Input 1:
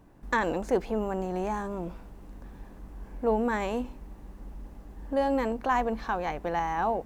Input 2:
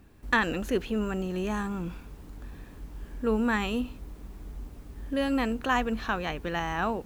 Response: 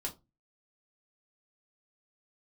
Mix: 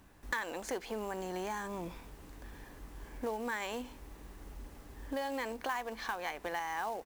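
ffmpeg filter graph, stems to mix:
-filter_complex "[0:a]tiltshelf=frequency=770:gain=-10,acrusher=bits=4:mode=log:mix=0:aa=0.000001,volume=-4dB,asplit=2[link_01][link_02];[1:a]volume=-1,adelay=0.4,volume=-6.5dB[link_03];[link_02]apad=whole_len=311066[link_04];[link_03][link_04]sidechaincompress=threshold=-35dB:ratio=8:attack=16:release=684[link_05];[link_01][link_05]amix=inputs=2:normalize=0,acompressor=threshold=-35dB:ratio=3"

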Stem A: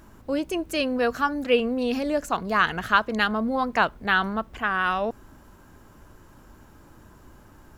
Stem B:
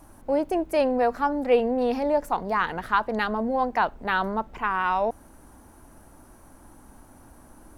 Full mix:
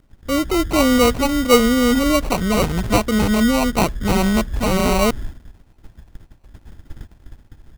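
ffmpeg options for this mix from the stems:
ffmpeg -i stem1.wav -i stem2.wav -filter_complex "[0:a]aemphasis=mode=reproduction:type=riaa,dynaudnorm=framelen=110:gausssize=9:maxgain=8dB,aexciter=amount=8:drive=3.3:freq=5000,volume=-0.5dB[link_01];[1:a]volume=-1,adelay=1.6,volume=-13.5dB,asplit=2[link_02][link_03];[link_03]apad=whole_len=342922[link_04];[link_01][link_04]sidechaingate=range=-33dB:threshold=-60dB:ratio=16:detection=peak[link_05];[link_05][link_02]amix=inputs=2:normalize=0,adynamicequalizer=threshold=0.0282:dfrequency=900:dqfactor=1.9:tfrequency=900:tqfactor=1.9:attack=5:release=100:ratio=0.375:range=1.5:mode=cutabove:tftype=bell,acrusher=samples=26:mix=1:aa=0.000001" out.wav

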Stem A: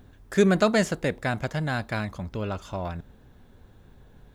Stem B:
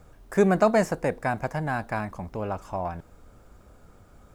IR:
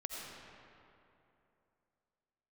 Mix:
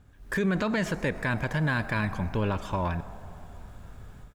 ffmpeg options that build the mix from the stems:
-filter_complex "[0:a]lowpass=2900,volume=-4.5dB[link_01];[1:a]acompressor=threshold=-23dB:ratio=6,volume=-1,adelay=1.7,volume=-12dB,asplit=2[link_02][link_03];[link_03]volume=-5dB[link_04];[2:a]atrim=start_sample=2205[link_05];[link_04][link_05]afir=irnorm=-1:irlink=0[link_06];[link_01][link_02][link_06]amix=inputs=3:normalize=0,equalizer=frequency=430:width=0.52:gain=-8,dynaudnorm=framelen=150:gausssize=3:maxgain=12dB,alimiter=limit=-18dB:level=0:latency=1:release=68"

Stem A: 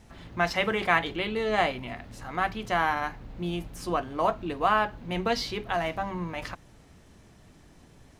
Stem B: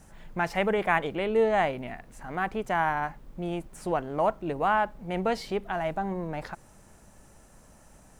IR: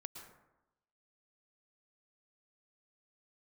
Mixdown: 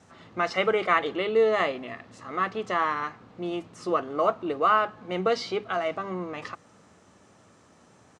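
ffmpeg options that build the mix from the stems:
-filter_complex "[0:a]volume=-4dB,asplit=2[link_01][link_02];[link_02]volume=-18dB[link_03];[1:a]volume=-1,adelay=1.8,volume=-3dB[link_04];[2:a]atrim=start_sample=2205[link_05];[link_03][link_05]afir=irnorm=-1:irlink=0[link_06];[link_01][link_04][link_06]amix=inputs=3:normalize=0,highpass=frequency=100:width=0.5412,highpass=frequency=100:width=1.3066,equalizer=frequency=140:width_type=q:width=4:gain=-7,equalizer=frequency=470:width_type=q:width=4:gain=3,equalizer=frequency=1200:width_type=q:width=4:gain=7,lowpass=frequency=7700:width=0.5412,lowpass=frequency=7700:width=1.3066"

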